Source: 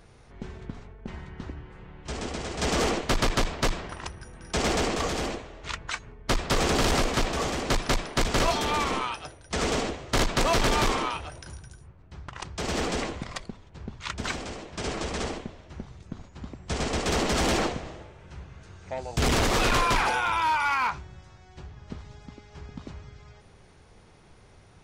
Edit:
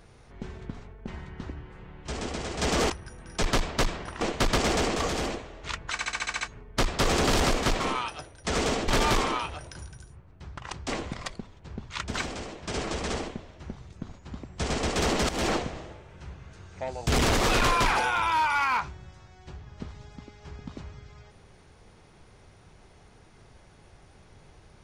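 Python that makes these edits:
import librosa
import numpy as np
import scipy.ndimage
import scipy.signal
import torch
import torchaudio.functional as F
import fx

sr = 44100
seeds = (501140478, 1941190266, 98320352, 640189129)

y = fx.edit(x, sr, fx.swap(start_s=2.9, length_s=0.37, other_s=4.05, other_length_s=0.53),
    fx.stutter(start_s=5.92, slice_s=0.07, count=8),
    fx.cut(start_s=7.31, length_s=1.55),
    fx.cut(start_s=9.94, length_s=0.65),
    fx.cut(start_s=12.59, length_s=0.39),
    fx.fade_in_from(start_s=17.39, length_s=0.29, curve='qsin', floor_db=-16.5), tone=tone)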